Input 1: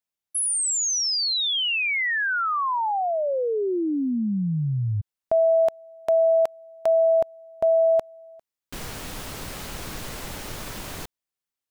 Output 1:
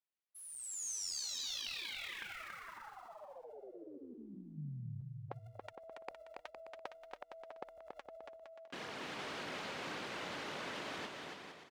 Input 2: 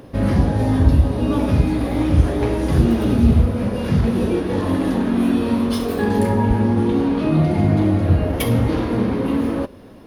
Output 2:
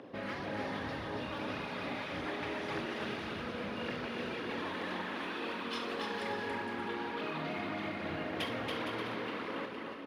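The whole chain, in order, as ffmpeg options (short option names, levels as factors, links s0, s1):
-filter_complex "[0:a]highpass=260,lowpass=3400,acrossover=split=1200[s0][s1];[s0]acompressor=threshold=0.0224:ratio=10:attack=38:release=134:knee=6:detection=rms[s2];[s1]aphaser=in_gain=1:out_gain=1:delay=4.4:decay=0.6:speed=1.8:type=triangular[s3];[s2][s3]amix=inputs=2:normalize=0,afftfilt=real='re*lt(hypot(re,im),0.2)':imag='im*lt(hypot(re,im),0.2)':win_size=1024:overlap=0.75,aecho=1:1:280|462|580.3|657.2|707.2:0.631|0.398|0.251|0.158|0.1,volume=0.447"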